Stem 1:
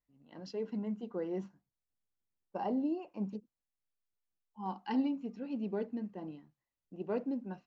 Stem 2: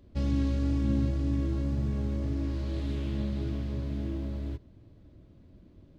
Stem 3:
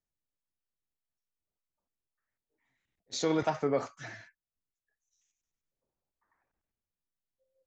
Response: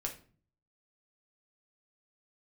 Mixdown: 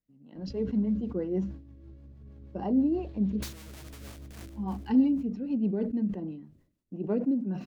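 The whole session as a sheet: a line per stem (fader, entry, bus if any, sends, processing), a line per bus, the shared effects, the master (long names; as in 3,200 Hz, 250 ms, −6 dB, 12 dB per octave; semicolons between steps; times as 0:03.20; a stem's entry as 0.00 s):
0.0 dB, 0.00 s, no send, no echo send, parametric band 200 Hz +11.5 dB 2.2 octaves
−4.0 dB, 0.35 s, no send, echo send −21 dB, high-shelf EQ 4,800 Hz −10 dB; compressor whose output falls as the input rises −34 dBFS, ratio −1; automatic ducking −10 dB, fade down 1.45 s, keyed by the first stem
−2.5 dB, 0.30 s, no send, echo send −13.5 dB, leveller curve on the samples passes 2; comparator with hysteresis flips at −33.5 dBFS; every bin compressed towards the loudest bin 2 to 1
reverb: not used
echo: repeating echo 376 ms, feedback 28%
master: rotating-speaker cabinet horn 6.3 Hz; level that may fall only so fast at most 100 dB per second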